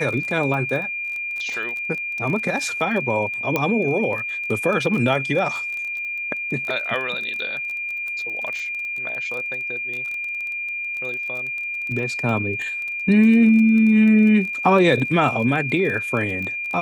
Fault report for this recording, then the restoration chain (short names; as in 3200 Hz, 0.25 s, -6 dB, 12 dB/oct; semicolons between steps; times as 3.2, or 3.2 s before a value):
crackle 22/s -27 dBFS
tone 2400 Hz -25 dBFS
3.56 pop -7 dBFS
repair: de-click; notch 2400 Hz, Q 30